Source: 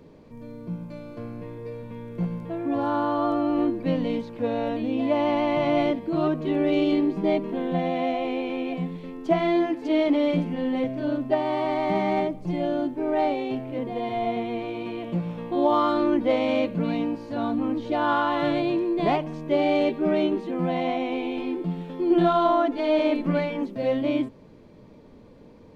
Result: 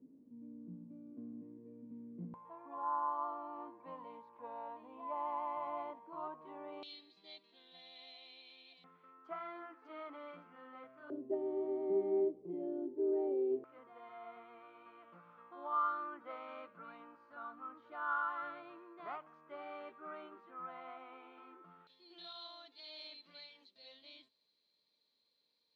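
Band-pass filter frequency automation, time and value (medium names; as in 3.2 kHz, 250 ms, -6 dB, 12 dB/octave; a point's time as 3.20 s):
band-pass filter, Q 12
260 Hz
from 2.34 s 1 kHz
from 6.83 s 4 kHz
from 8.84 s 1.3 kHz
from 11.10 s 390 Hz
from 13.64 s 1.3 kHz
from 21.87 s 4.1 kHz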